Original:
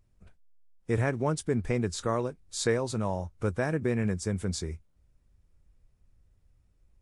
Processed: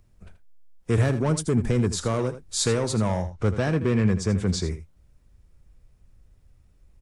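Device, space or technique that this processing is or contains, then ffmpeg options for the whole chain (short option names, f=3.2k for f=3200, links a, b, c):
one-band saturation: -filter_complex "[0:a]acrossover=split=240|4200[a][b][c];[b]asoftclip=type=tanh:threshold=-30.5dB[d];[a][d][c]amix=inputs=3:normalize=0,asettb=1/sr,asplit=3[e][f][g];[e]atrim=end=1.064[h];[f]atrim=start=1.06:end=2.19,asetpts=PTS-STARTPTS,afade=t=in:d=0.004:c=qsin,afade=t=out:st=1.126:d=0.004:c=qsin,equalizer=f=3.1k:t=o:w=1.9:g=-3[i];[g]atrim=start=2.186[j];[h][i]acrossfade=d=0.004:c1=hsin:c2=qsin[k];[k][j]acrossfade=d=0.004:c1=qsin:c2=hsin,asettb=1/sr,asplit=3[l][m][n];[l]atrim=end=3.224[o];[m]atrim=start=3.22:end=4.64,asetpts=PTS-STARTPTS,afade=t=in:d=0.004:c=qsin,afade=t=out:st=1.416:d=0.004:c=qsin,lowpass=6.1k[p];[n]atrim=start=4.636[q];[o][p]acrossfade=d=0.004:c1=hsin:c2=qsin[r];[r][q]acrossfade=d=0.004:c1=qsin:c2=hsin,aecho=1:1:81:0.237,volume=8dB"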